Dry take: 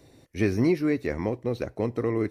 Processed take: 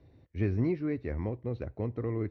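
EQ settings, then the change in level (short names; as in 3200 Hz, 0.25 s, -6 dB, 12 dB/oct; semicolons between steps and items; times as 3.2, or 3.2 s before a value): air absorption 270 m; bell 71 Hz +12 dB 1.8 oct; -8.5 dB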